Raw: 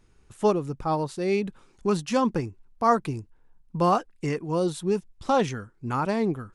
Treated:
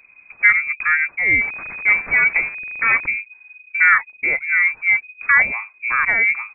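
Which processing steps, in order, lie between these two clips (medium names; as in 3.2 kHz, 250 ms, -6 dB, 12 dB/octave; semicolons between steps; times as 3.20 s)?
1.41–3.06 s: one-bit delta coder 16 kbps, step -34.5 dBFS; frequency inversion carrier 2.5 kHz; trim +8 dB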